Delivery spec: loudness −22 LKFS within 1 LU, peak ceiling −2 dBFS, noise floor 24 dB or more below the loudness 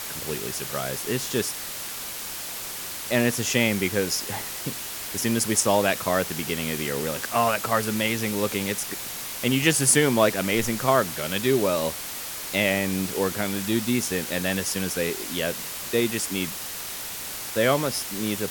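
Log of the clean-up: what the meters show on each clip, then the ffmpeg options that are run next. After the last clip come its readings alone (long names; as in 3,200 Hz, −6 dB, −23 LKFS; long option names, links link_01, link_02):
background noise floor −34 dBFS; target noise floor −49 dBFS; integrated loudness −25.0 LKFS; sample peak −5.0 dBFS; target loudness −22.0 LKFS
→ -af "afftdn=noise_reduction=15:noise_floor=-34"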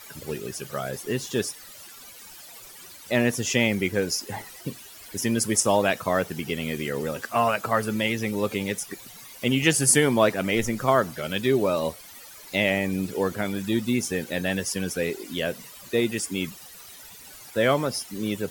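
background noise floor −45 dBFS; target noise floor −49 dBFS
→ -af "afftdn=noise_reduction=6:noise_floor=-45"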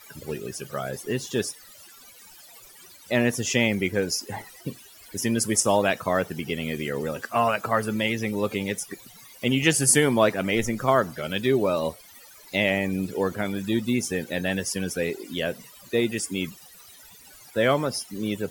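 background noise floor −49 dBFS; integrated loudness −25.0 LKFS; sample peak −5.5 dBFS; target loudness −22.0 LKFS
→ -af "volume=3dB"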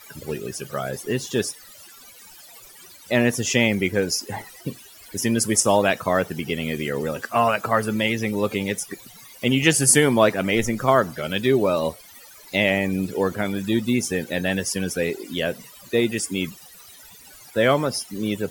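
integrated loudness −22.0 LKFS; sample peak −2.5 dBFS; background noise floor −46 dBFS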